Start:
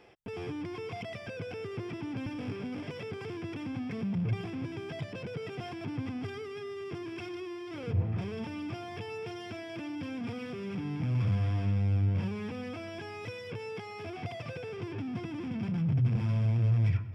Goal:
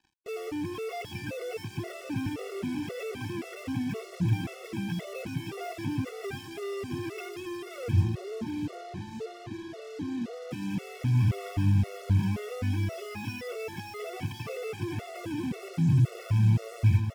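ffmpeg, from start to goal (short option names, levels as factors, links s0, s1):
-filter_complex "[0:a]asettb=1/sr,asplit=3[s0][s1][s2];[s0]atrim=end=8.084[s3];[s1]atrim=start=8.08:end=10.51,asetpts=PTS-STARTPTS,afade=t=in:d=0.004:c=qsin,afade=t=out:st=2.426:d=0.004:c=qsin,bandpass=f=280:t=q:w=0.56:csg=0[s4];[s2]atrim=start=10.506[s5];[s3][s4]acrossfade=d=0.004:c1=hsin:c2=qsin[s6];[s6][s5]acrossfade=d=0.004:c1=qsin:c2=hsin,acrusher=bits=7:mix=0:aa=0.5,aecho=1:1:748:0.447,afftfilt=real='re*gt(sin(2*PI*1.9*pts/sr)*(1-2*mod(floor(b*sr/1024/370),2)),0)':imag='im*gt(sin(2*PI*1.9*pts/sr)*(1-2*mod(floor(b*sr/1024/370),2)),0)':win_size=1024:overlap=0.75,volume=1.88"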